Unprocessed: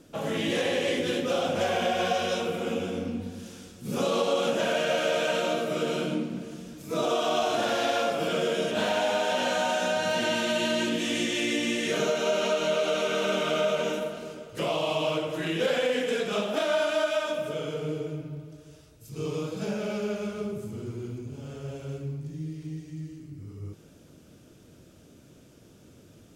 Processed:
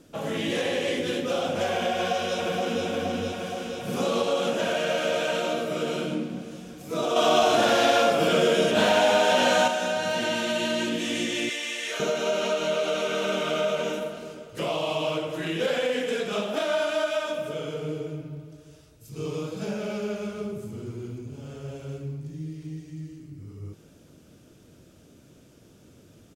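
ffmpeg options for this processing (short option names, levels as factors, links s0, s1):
-filter_complex "[0:a]asplit=2[s0][s1];[s1]afade=t=in:st=1.91:d=0.01,afade=t=out:st=2.85:d=0.01,aecho=0:1:470|940|1410|1880|2350|2820|3290|3760|4230|4700|5170|5640:0.630957|0.473218|0.354914|0.266185|0.199639|0.149729|0.112297|0.0842226|0.063167|0.0473752|0.0355314|0.0266486[s2];[s0][s2]amix=inputs=2:normalize=0,asettb=1/sr,asplit=3[s3][s4][s5];[s3]atrim=end=7.164[s6];[s4]atrim=start=7.16:end=9.68,asetpts=PTS-STARTPTS,afade=t=in:d=0.004:c=qsin,afade=t=out:st=2.516:d=0.004:c=qsin,acontrast=55[s7];[s5]atrim=start=9.676[s8];[s6][s7]acrossfade=d=0.004:c1=hsin:c2=qsin[s9];[s9][s8]acrossfade=d=0.004:c1=qsin:c2=hsin,asettb=1/sr,asplit=3[s10][s11][s12];[s10]atrim=end=11.494[s13];[s11]atrim=start=11.49:end=12,asetpts=PTS-STARTPTS,afade=t=in:d=0.004:c=qsin,afade=t=out:st=0.506:d=0.004:c=qsin,highpass=760[s14];[s12]atrim=start=11.996[s15];[s13][s14]acrossfade=d=0.004:c1=hsin:c2=qsin[s16];[s16][s15]acrossfade=d=0.004:c1=qsin:c2=hsin"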